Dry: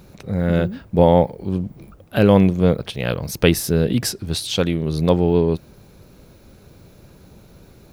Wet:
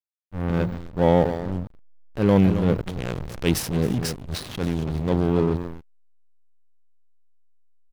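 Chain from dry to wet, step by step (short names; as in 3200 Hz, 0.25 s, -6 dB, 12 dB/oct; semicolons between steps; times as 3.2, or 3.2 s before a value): feedback echo 0.274 s, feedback 16%, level -11 dB; transient shaper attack -8 dB, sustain +4 dB; backlash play -17 dBFS; gain -2.5 dB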